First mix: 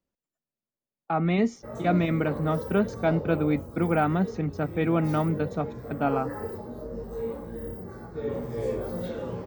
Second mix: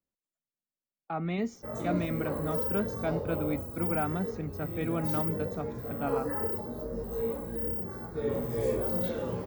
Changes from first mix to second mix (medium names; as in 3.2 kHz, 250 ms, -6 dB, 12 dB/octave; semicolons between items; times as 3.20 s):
speech -8.0 dB; master: add treble shelf 9.3 kHz +12 dB